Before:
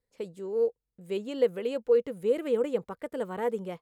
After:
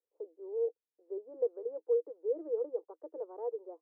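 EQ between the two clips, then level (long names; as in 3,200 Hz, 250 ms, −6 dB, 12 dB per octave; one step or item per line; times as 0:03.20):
Chebyshev high-pass with heavy ripple 310 Hz, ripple 3 dB
inverse Chebyshev low-pass filter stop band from 2,700 Hz, stop band 60 dB
−6.0 dB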